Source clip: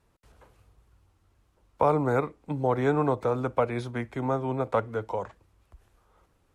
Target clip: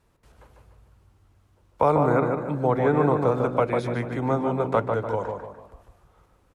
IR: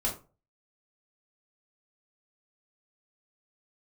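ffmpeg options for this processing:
-filter_complex "[0:a]asplit=2[s0][s1];[s1]asplit=4[s2][s3][s4][s5];[s2]adelay=151,afreqshift=52,volume=0.211[s6];[s3]adelay=302,afreqshift=104,volume=0.0933[s7];[s4]adelay=453,afreqshift=156,volume=0.0407[s8];[s5]adelay=604,afreqshift=208,volume=0.018[s9];[s6][s7][s8][s9]amix=inputs=4:normalize=0[s10];[s0][s10]amix=inputs=2:normalize=0,asettb=1/sr,asplit=3[s11][s12][s13];[s11]atrim=end=1.964[s14];[s12]atrim=start=1.96:end=3.26,asetpts=PTS-STARTPTS,afade=t=in:d=0.004:c=qsin,afade=t=out:st=1.296:d=0.004:c=qsin,acrossover=split=2800[s15][s16];[s16]acompressor=threshold=0.00158:ratio=4:attack=1:release=60[s17];[s15][s17]amix=inputs=2:normalize=0[s18];[s13]atrim=start=3.256[s19];[s14][s18]acrossfade=d=0.004:c1=hsin:c2=qsin[s20];[s20][s19]acrossfade=d=0.004:c1=qsin:c2=hsin,asplit=2[s21][s22];[s22]adelay=147,lowpass=f=1700:p=1,volume=0.631,asplit=2[s23][s24];[s24]adelay=147,lowpass=f=1700:p=1,volume=0.4,asplit=2[s25][s26];[s26]adelay=147,lowpass=f=1700:p=1,volume=0.4,asplit=2[s27][s28];[s28]adelay=147,lowpass=f=1700:p=1,volume=0.4,asplit=2[s29][s30];[s30]adelay=147,lowpass=f=1700:p=1,volume=0.4[s31];[s23][s25][s27][s29][s31]amix=inputs=5:normalize=0[s32];[s21][s32]amix=inputs=2:normalize=0,volume=1.33"

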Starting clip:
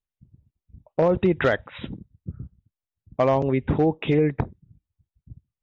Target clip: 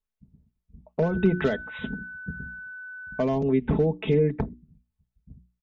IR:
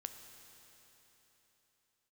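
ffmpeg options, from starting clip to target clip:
-filter_complex "[0:a]highshelf=f=2200:g=-6,bandreject=f=60:t=h:w=6,bandreject=f=120:t=h:w=6,bandreject=f=180:t=h:w=6,bandreject=f=240:t=h:w=6,bandreject=f=300:t=h:w=6,bandreject=f=360:t=h:w=6,aecho=1:1:4.6:0.72,acrossover=split=430|3000[s0][s1][s2];[s1]acompressor=threshold=0.0224:ratio=4[s3];[s0][s3][s2]amix=inputs=3:normalize=0,asettb=1/sr,asplit=3[s4][s5][s6];[s4]atrim=end=1.034[s7];[s5]atrim=start=1.03:end=3.22,asetpts=PTS-STARTPTS,afade=t=in:d=0.004:c=qsin,afade=t=out:st=2.186:d=0.004:c=qsin,aeval=exprs='val(0)+0.0141*sin(2*PI*1500*n/s)':c=same[s8];[s6]atrim=start=3.216[s9];[s7][s8]acrossfade=d=0.004:c1=hsin:c2=qsin[s10];[s10][s9]acrossfade=d=0.004:c1=qsin:c2=hsin"

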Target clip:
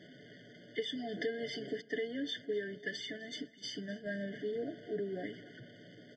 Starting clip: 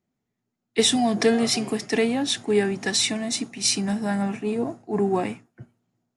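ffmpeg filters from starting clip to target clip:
-filter_complex "[0:a]aeval=exprs='val(0)+0.5*0.0168*sgn(val(0))':c=same,highpass=f=530:p=1,asettb=1/sr,asplit=3[s0][s1][s2];[s0]atrim=end=1.814[s3];[s1]atrim=start=1.81:end=4.07,asetpts=PTS-STARTPTS,afade=t=in:d=0.004:c=qsin,afade=t=out:st=2.256:d=0.004:c=qsin,agate=range=0.0224:threshold=0.0447:ratio=3:detection=peak[s4];[s2]atrim=start=4.066[s5];[s3][s4]acrossfade=d=0.004:c1=hsin:c2=qsin[s6];[s6][s5]acrossfade=d=0.004:c1=qsin:c2=hsin,lowpass=f=4000:w=0.5412,lowpass=f=4000:w=1.3066,equalizer=f=970:w=1.8:g=-10.5,aecho=1:1:6.8:0.55,acompressor=threshold=0.0398:ratio=5,aecho=1:1:253|506|759:0.0944|0.0359|0.0136,afftfilt=real='re*eq(mod(floor(b*sr/1024/730),2),0)':imag='im*eq(mod(floor(b*sr/1024/730),2),0)':win_size=1024:overlap=0.75,volume=0.531"

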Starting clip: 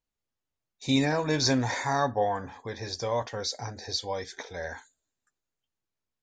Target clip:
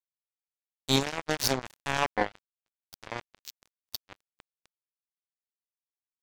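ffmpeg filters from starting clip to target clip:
-filter_complex "[0:a]highpass=f=44:p=1,equalizer=f=2200:t=o:w=0.27:g=-8.5,asplit=2[s0][s1];[s1]acompressor=threshold=0.0126:ratio=5,volume=1.12[s2];[s0][s2]amix=inputs=2:normalize=0,acrusher=bits=2:mix=0:aa=0.5"

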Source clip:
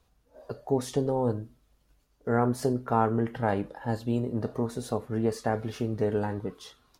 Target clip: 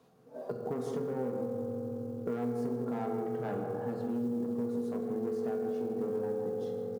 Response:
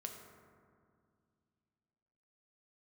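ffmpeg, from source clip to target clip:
-filter_complex "[0:a]aeval=exprs='0.335*(cos(1*acos(clip(val(0)/0.335,-1,1)))-cos(1*PI/2))+0.106*(cos(2*acos(clip(val(0)/0.335,-1,1)))-cos(2*PI/2))+0.00668*(cos(3*acos(clip(val(0)/0.335,-1,1)))-cos(3*PI/2))+0.0133*(cos(8*acos(clip(val(0)/0.335,-1,1)))-cos(8*PI/2))':c=same,tiltshelf=f=970:g=6.5,asoftclip=type=tanh:threshold=0.119,acontrast=64,highpass=f=150:w=0.5412,highpass=f=150:w=1.3066,asplit=2[s0][s1];[s1]adelay=159,lowpass=f=1100:p=1,volume=0.562,asplit=2[s2][s3];[s3]adelay=159,lowpass=f=1100:p=1,volume=0.27,asplit=2[s4][s5];[s5]adelay=159,lowpass=f=1100:p=1,volume=0.27,asplit=2[s6][s7];[s7]adelay=159,lowpass=f=1100:p=1,volume=0.27[s8];[s0][s2][s4][s6][s8]amix=inputs=5:normalize=0[s9];[1:a]atrim=start_sample=2205,asetrate=48510,aresample=44100[s10];[s9][s10]afir=irnorm=-1:irlink=0,acompressor=threshold=0.00891:ratio=4,acrusher=bits=9:mode=log:mix=0:aa=0.000001,volume=1.78"

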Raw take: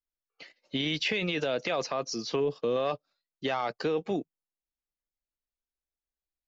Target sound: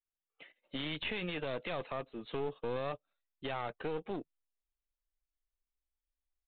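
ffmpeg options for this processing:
-af "asubboost=boost=6.5:cutoff=63,aresample=8000,aeval=exprs='clip(val(0),-1,0.0188)':c=same,aresample=44100,volume=0.531"

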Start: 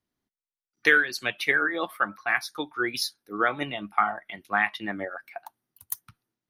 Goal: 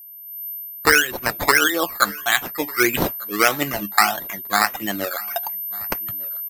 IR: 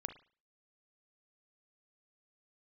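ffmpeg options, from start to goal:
-af "highshelf=f=9800:g=-10.5,acrusher=samples=12:mix=1:aa=0.000001:lfo=1:lforange=7.2:lforate=1.6,aeval=exprs='val(0)+0.0126*sin(2*PI*13000*n/s)':c=same,dynaudnorm=f=240:g=3:m=4.47,aecho=1:1:1197:0.0708,volume=0.891"

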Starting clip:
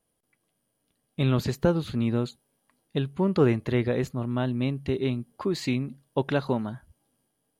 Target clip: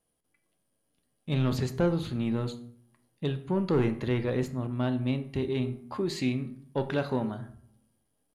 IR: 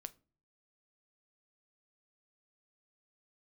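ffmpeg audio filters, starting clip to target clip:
-filter_complex "[0:a]atempo=0.91,asoftclip=type=tanh:threshold=0.178,bandreject=f=79.9:t=h:w=4,bandreject=f=159.8:t=h:w=4,bandreject=f=239.7:t=h:w=4,bandreject=f=319.6:t=h:w=4,bandreject=f=399.5:t=h:w=4,bandreject=f=479.4:t=h:w=4,bandreject=f=559.3:t=h:w=4,bandreject=f=639.2:t=h:w=4,bandreject=f=719.1:t=h:w=4,bandreject=f=799:t=h:w=4,bandreject=f=878.9:t=h:w=4,bandreject=f=958.8:t=h:w=4,bandreject=f=1038.7:t=h:w=4,bandreject=f=1118.6:t=h:w=4,bandreject=f=1198.5:t=h:w=4,bandreject=f=1278.4:t=h:w=4,bandreject=f=1358.3:t=h:w=4,bandreject=f=1438.2:t=h:w=4,bandreject=f=1518.1:t=h:w=4,bandreject=f=1598:t=h:w=4,bandreject=f=1677.9:t=h:w=4,bandreject=f=1757.8:t=h:w=4,bandreject=f=1837.7:t=h:w=4,bandreject=f=1917.6:t=h:w=4,bandreject=f=1997.5:t=h:w=4,bandreject=f=2077.4:t=h:w=4,bandreject=f=2157.3:t=h:w=4,bandreject=f=2237.2:t=h:w=4,bandreject=f=2317.1:t=h:w=4,bandreject=f=2397:t=h:w=4,bandreject=f=2476.9:t=h:w=4[s0];[1:a]atrim=start_sample=2205,asetrate=24255,aresample=44100[s1];[s0][s1]afir=irnorm=-1:irlink=0"

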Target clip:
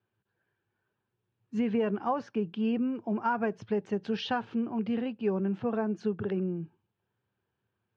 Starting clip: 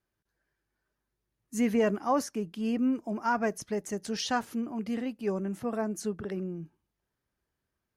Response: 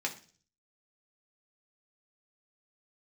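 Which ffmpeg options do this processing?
-af "acompressor=threshold=0.0398:ratio=6,highpass=f=100:w=0.5412,highpass=f=100:w=1.3066,equalizer=f=110:t=q:w=4:g=7,equalizer=f=150:t=q:w=4:g=-5,equalizer=f=280:t=q:w=4:g=-8,equalizer=f=620:t=q:w=4:g=-7,equalizer=f=1200:t=q:w=4:g=-5,equalizer=f=2000:t=q:w=4:g=-10,lowpass=f=3100:w=0.5412,lowpass=f=3100:w=1.3066,volume=2"

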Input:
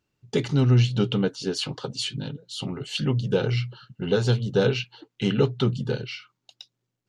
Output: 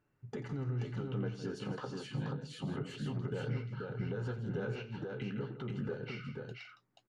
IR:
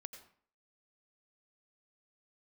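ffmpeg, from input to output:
-af "flanger=delay=6.6:depth=9.5:regen=-46:speed=0.29:shape=triangular,acompressor=threshold=0.0141:ratio=6,alimiter=level_in=3.16:limit=0.0631:level=0:latency=1:release=142,volume=0.316,highshelf=f=2500:t=q:w=1.5:g=-11.5,aecho=1:1:87|161|481:0.188|0.266|0.668,volume=1.58"

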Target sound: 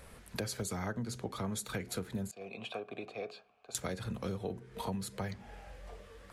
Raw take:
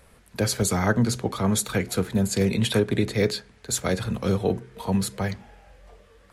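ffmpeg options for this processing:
-filter_complex "[0:a]asettb=1/sr,asplit=3[s0][s1][s2];[s0]atrim=end=2.314[s3];[s1]atrim=start=2.31:end=3.75,asetpts=PTS-STARTPTS,afade=t=in:d=0.004:c=qsin,afade=t=out:st=1.436:d=0.004:c=qsin,asplit=3[s4][s5][s6];[s4]bandpass=f=730:t=q:w=8,volume=1[s7];[s5]bandpass=f=1090:t=q:w=8,volume=0.501[s8];[s6]bandpass=f=2440:t=q:w=8,volume=0.355[s9];[s7][s8][s9]amix=inputs=3:normalize=0[s10];[s2]atrim=start=3.746[s11];[s3][s10]acrossfade=d=0.004:c1=hsin:c2=qsin[s12];[s12][s11]acrossfade=d=0.004:c1=qsin:c2=hsin,acompressor=threshold=0.0141:ratio=6,volume=1.12"

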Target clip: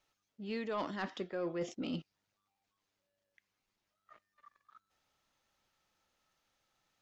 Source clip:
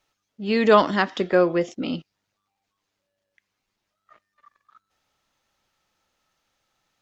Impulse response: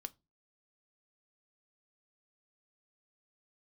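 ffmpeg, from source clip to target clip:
-af "areverse,acompressor=threshold=0.0398:ratio=6,areverse,asoftclip=type=tanh:threshold=0.1,volume=0.501"

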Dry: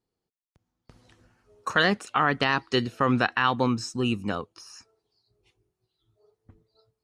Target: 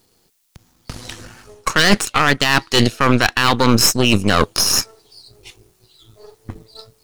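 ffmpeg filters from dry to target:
-af "aeval=exprs='if(lt(val(0),0),0.447*val(0),val(0))':c=same,highshelf=f=2700:g=11,areverse,acompressor=threshold=0.0178:ratio=10,areverse,apsyclip=33.5,aeval=exprs='1.06*(cos(1*acos(clip(val(0)/1.06,-1,1)))-cos(1*PI/2))+0.473*(cos(2*acos(clip(val(0)/1.06,-1,1)))-cos(2*PI/2))':c=same,volume=0.447"

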